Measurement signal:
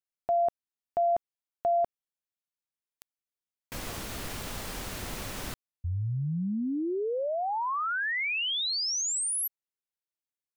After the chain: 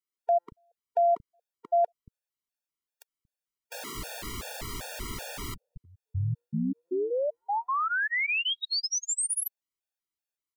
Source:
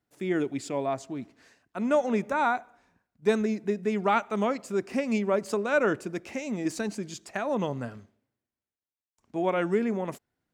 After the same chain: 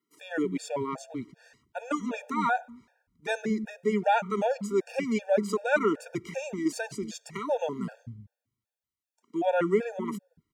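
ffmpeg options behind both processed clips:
-filter_complex "[0:a]acrossover=split=190[s0][s1];[s0]adelay=230[s2];[s2][s1]amix=inputs=2:normalize=0,afftfilt=real='re*gt(sin(2*PI*2.6*pts/sr)*(1-2*mod(floor(b*sr/1024/470),2)),0)':imag='im*gt(sin(2*PI*2.6*pts/sr)*(1-2*mod(floor(b*sr/1024/470),2)),0)':win_size=1024:overlap=0.75,volume=1.41"

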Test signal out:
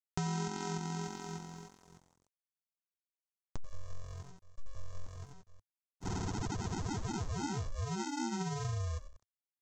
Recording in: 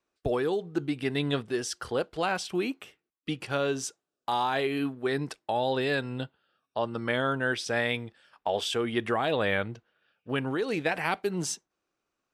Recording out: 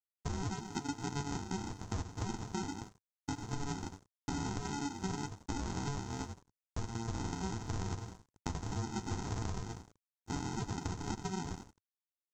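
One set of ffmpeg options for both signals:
-filter_complex "[0:a]asplit=5[s0][s1][s2][s3][s4];[s1]adelay=87,afreqshift=-44,volume=0.282[s5];[s2]adelay=174,afreqshift=-88,volume=0.112[s6];[s3]adelay=261,afreqshift=-132,volume=0.0452[s7];[s4]adelay=348,afreqshift=-176,volume=0.018[s8];[s0][s5][s6][s7][s8]amix=inputs=5:normalize=0,aresample=16000,acrusher=samples=28:mix=1:aa=0.000001,aresample=44100,flanger=delay=8.9:depth=2.4:regen=-33:speed=1.7:shape=sinusoidal,aeval=exprs='sgn(val(0))*max(abs(val(0))-0.0015,0)':c=same,equalizer=f=100:t=o:w=0.67:g=4,equalizer=f=1000:t=o:w=0.67:g=6,equalizer=f=2500:t=o:w=0.67:g=-4,equalizer=f=6300:t=o:w=0.67:g=9,acompressor=threshold=0.0158:ratio=5,volume=1.12"

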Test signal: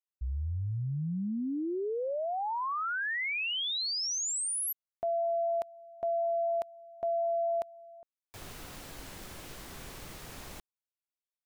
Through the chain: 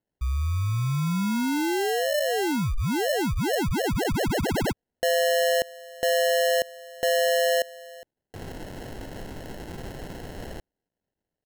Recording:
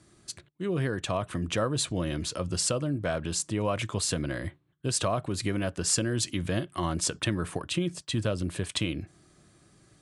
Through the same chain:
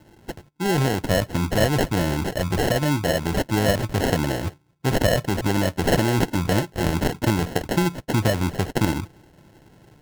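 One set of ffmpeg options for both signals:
-af "acrusher=samples=37:mix=1:aa=0.000001,volume=2.51"

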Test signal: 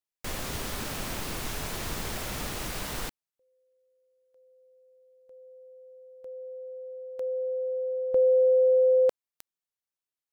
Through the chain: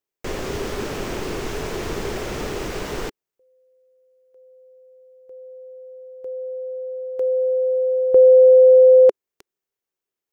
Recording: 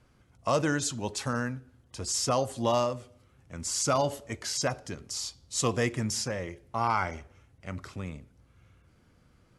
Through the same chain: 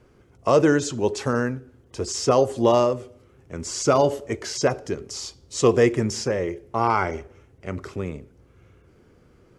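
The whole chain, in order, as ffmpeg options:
-filter_complex "[0:a]acrossover=split=8100[s0][s1];[s1]acompressor=threshold=0.00282:ratio=4:attack=1:release=60[s2];[s0][s2]amix=inputs=2:normalize=0,equalizer=f=400:t=o:w=0.67:g=12,equalizer=f=4000:t=o:w=0.67:g=-4,equalizer=f=10000:t=o:w=0.67:g=-5,volume=1.78"

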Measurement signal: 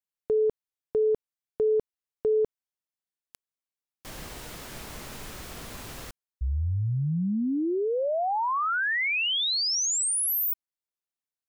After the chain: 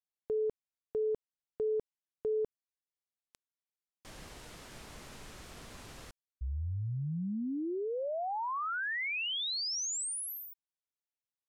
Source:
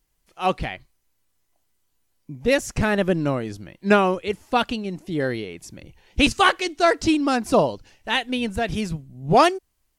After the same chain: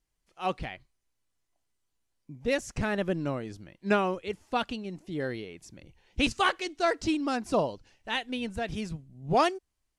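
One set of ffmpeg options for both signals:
-af "lowpass=10000,volume=0.376"

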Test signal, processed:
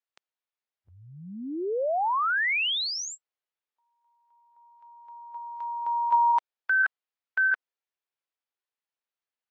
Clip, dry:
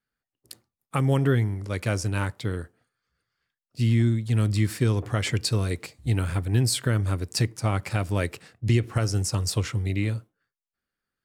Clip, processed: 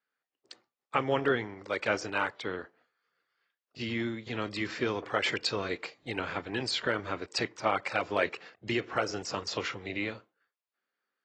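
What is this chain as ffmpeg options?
-af "highpass=450,lowpass=3700,volume=1.19" -ar 24000 -c:a aac -b:a 24k

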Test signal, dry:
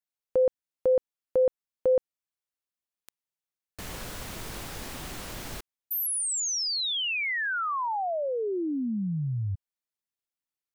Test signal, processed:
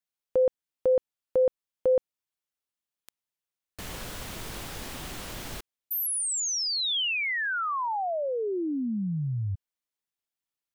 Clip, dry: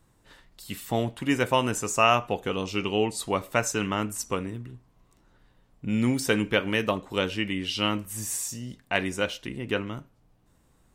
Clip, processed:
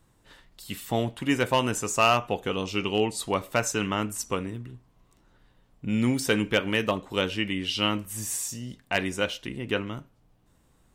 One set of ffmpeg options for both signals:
-af "equalizer=f=3200:t=o:w=0.53:g=2,asoftclip=type=hard:threshold=0.224"

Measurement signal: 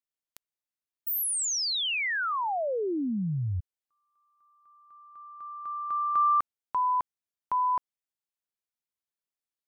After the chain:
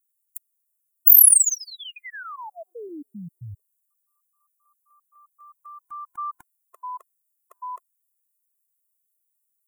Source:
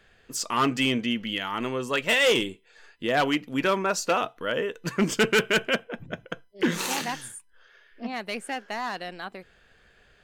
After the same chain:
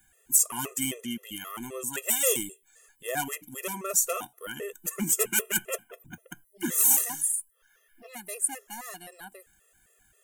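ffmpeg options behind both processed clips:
-af "aexciter=amount=13.1:drive=9:freq=7100,afftfilt=real='re*gt(sin(2*PI*3.8*pts/sr)*(1-2*mod(floor(b*sr/1024/350),2)),0)':imag='im*gt(sin(2*PI*3.8*pts/sr)*(1-2*mod(floor(b*sr/1024/350),2)),0)':win_size=1024:overlap=0.75,volume=0.473"

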